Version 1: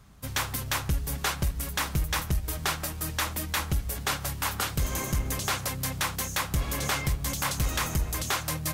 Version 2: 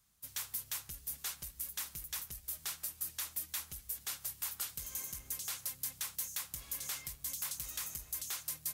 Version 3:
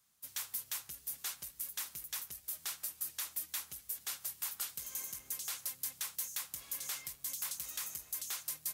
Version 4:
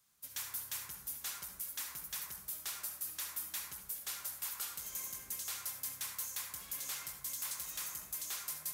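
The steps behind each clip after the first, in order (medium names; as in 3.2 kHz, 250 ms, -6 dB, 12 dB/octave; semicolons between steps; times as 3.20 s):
pre-emphasis filter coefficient 0.9; trim -7 dB
high-pass 270 Hz 6 dB/octave
saturation -31 dBFS, distortion -17 dB; on a send at -2 dB: reverberation RT60 0.90 s, pre-delay 57 ms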